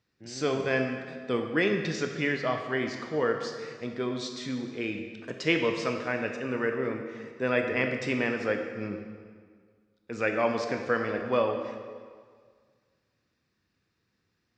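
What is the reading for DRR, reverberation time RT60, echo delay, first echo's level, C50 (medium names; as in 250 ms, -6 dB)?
4.0 dB, 1.8 s, no echo, no echo, 5.5 dB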